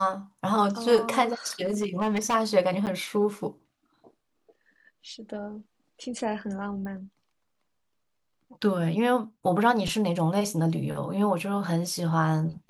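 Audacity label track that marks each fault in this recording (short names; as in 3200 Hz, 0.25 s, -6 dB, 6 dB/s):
1.650000	2.350000	clipped -22.5 dBFS
2.860000	2.870000	gap 8.4 ms
6.850000	6.850000	pop -28 dBFS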